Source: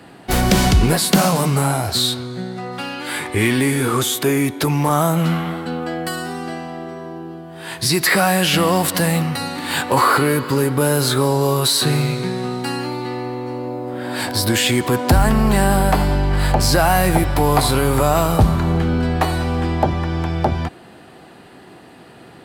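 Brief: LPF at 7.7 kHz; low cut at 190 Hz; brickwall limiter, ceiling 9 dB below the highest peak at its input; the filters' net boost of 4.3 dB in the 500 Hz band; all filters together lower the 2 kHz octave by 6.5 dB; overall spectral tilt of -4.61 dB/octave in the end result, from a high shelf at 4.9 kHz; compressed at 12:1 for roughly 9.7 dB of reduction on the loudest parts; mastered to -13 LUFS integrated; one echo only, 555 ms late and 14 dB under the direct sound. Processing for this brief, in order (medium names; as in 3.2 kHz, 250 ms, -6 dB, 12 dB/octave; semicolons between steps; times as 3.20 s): high-pass 190 Hz; low-pass 7.7 kHz; peaking EQ 500 Hz +6 dB; peaking EQ 2 kHz -8 dB; treble shelf 4.9 kHz -7 dB; compression 12:1, threshold -20 dBFS; peak limiter -17 dBFS; delay 555 ms -14 dB; trim +13.5 dB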